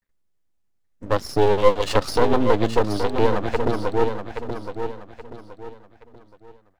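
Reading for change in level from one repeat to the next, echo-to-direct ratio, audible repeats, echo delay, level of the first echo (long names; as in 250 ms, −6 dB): −9.5 dB, −7.0 dB, 3, 825 ms, −7.5 dB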